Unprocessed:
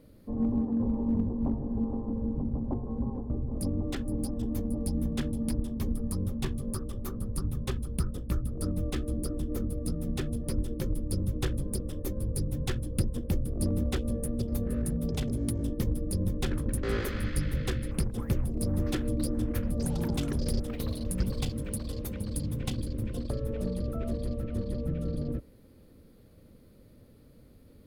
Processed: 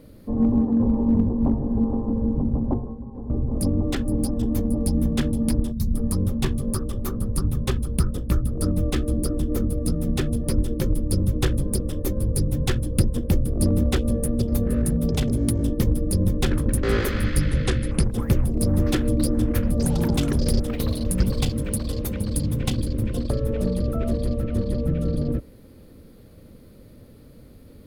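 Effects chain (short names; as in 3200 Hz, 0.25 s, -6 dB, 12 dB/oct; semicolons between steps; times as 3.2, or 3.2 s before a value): 2.73–3.38 dip -13 dB, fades 0.25 s; 5.72–5.94 spectral gain 220–3700 Hz -15 dB; 17.5–18.04 steep low-pass 11000 Hz 96 dB/oct; gain +8.5 dB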